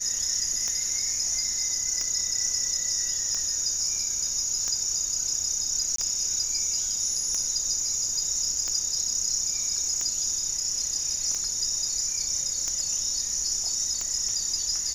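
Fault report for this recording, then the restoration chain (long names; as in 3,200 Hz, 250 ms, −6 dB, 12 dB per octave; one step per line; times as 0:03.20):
scratch tick 45 rpm −17 dBFS
0:05.96–0:05.98: drop-out 23 ms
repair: click removal
repair the gap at 0:05.96, 23 ms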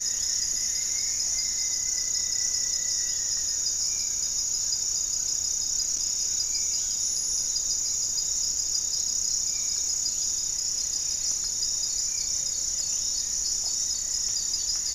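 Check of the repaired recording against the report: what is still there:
none of them is left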